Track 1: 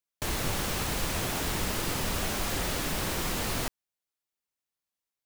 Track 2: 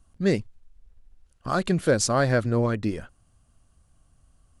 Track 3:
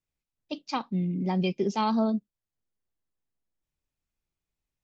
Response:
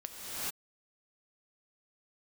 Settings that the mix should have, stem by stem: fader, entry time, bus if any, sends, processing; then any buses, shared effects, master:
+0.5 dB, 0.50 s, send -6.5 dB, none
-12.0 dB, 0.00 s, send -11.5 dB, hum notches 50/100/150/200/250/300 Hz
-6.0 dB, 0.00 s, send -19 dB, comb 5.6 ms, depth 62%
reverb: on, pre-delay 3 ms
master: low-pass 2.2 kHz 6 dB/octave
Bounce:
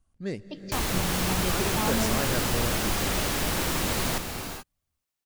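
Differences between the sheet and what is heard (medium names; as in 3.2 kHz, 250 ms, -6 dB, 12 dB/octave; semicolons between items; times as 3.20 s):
stem 2: missing hum notches 50/100/150/200/250/300 Hz; stem 3: missing comb 5.6 ms, depth 62%; master: missing low-pass 2.2 kHz 6 dB/octave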